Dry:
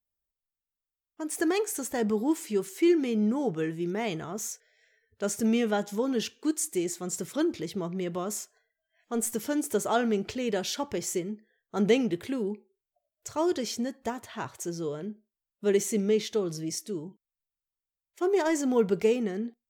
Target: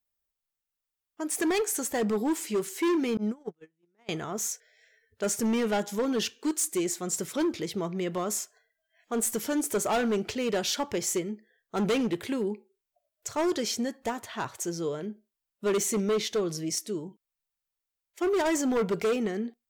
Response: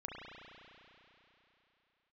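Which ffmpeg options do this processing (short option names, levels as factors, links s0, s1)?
-filter_complex "[0:a]asettb=1/sr,asplit=3[s0][s1][s2];[s0]atrim=end=3.174[s3];[s1]atrim=start=3.17:end=4.09,asetpts=PTS-STARTPTS,afade=t=in:d=0.004:c=qsin,afade=t=out:st=0.916:d=0.004:c=qsin,agate=range=0.00631:threshold=0.0631:ratio=16:detection=peak[s4];[s2]atrim=start=4.086[s5];[s3][s4]acrossfade=d=0.004:c1=hsin:c2=qsin[s6];[s6][s5]acrossfade=d=0.004:c1=qsin:c2=hsin,lowshelf=f=360:g=-5,volume=21.1,asoftclip=hard,volume=0.0473,volume=1.58"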